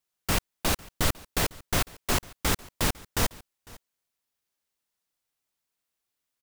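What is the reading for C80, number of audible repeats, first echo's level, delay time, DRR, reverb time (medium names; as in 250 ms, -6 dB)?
no reverb, 1, -22.5 dB, 502 ms, no reverb, no reverb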